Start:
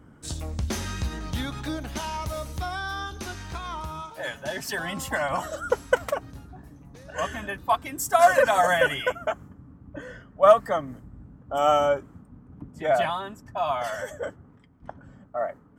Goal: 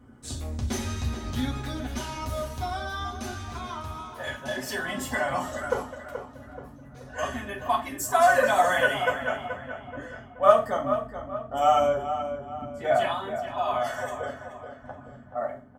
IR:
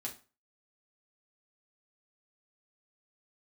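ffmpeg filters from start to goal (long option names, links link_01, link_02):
-filter_complex "[0:a]asplit=3[link_01][link_02][link_03];[link_01]afade=type=out:start_time=5.82:duration=0.02[link_04];[link_02]acompressor=threshold=-40dB:ratio=5,afade=type=in:start_time=5.82:duration=0.02,afade=type=out:start_time=7.12:duration=0.02[link_05];[link_03]afade=type=in:start_time=7.12:duration=0.02[link_06];[link_04][link_05][link_06]amix=inputs=3:normalize=0,asplit=2[link_07][link_08];[link_08]adelay=429,lowpass=frequency=2900:poles=1,volume=-9dB,asplit=2[link_09][link_10];[link_10]adelay=429,lowpass=frequency=2900:poles=1,volume=0.44,asplit=2[link_11][link_12];[link_12]adelay=429,lowpass=frequency=2900:poles=1,volume=0.44,asplit=2[link_13][link_14];[link_14]adelay=429,lowpass=frequency=2900:poles=1,volume=0.44,asplit=2[link_15][link_16];[link_16]adelay=429,lowpass=frequency=2900:poles=1,volume=0.44[link_17];[link_07][link_09][link_11][link_13][link_15][link_17]amix=inputs=6:normalize=0[link_18];[1:a]atrim=start_sample=2205[link_19];[link_18][link_19]afir=irnorm=-1:irlink=0"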